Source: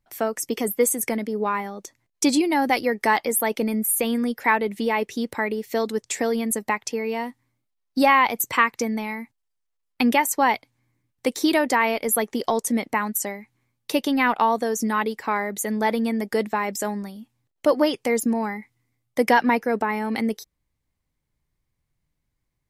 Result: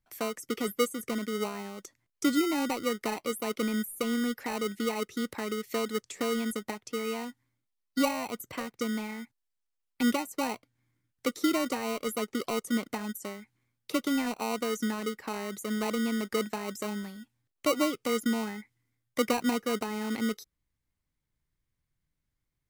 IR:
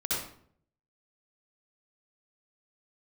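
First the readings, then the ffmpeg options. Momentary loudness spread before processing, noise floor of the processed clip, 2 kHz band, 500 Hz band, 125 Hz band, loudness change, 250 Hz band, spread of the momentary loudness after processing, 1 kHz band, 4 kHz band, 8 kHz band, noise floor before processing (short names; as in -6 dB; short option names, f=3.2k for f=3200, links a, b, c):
9 LU, -83 dBFS, -12.0 dB, -8.5 dB, n/a, -8.5 dB, -6.0 dB, 10 LU, -13.5 dB, -4.5 dB, -11.5 dB, -78 dBFS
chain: -filter_complex "[0:a]acrossover=split=700[a][b];[a]acrusher=samples=26:mix=1:aa=0.000001[c];[b]acompressor=threshold=-36dB:ratio=6[d];[c][d]amix=inputs=2:normalize=0,volume=-5.5dB"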